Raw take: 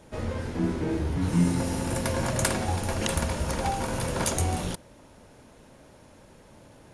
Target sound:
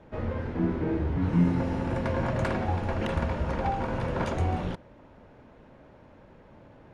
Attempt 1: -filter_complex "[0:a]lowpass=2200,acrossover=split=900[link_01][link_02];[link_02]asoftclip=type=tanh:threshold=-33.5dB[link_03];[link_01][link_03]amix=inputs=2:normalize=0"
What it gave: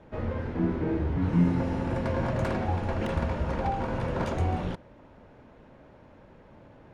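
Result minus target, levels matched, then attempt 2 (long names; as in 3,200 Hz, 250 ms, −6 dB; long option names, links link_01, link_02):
soft clipping: distortion +8 dB
-filter_complex "[0:a]lowpass=2200,acrossover=split=900[link_01][link_02];[link_02]asoftclip=type=tanh:threshold=-25dB[link_03];[link_01][link_03]amix=inputs=2:normalize=0"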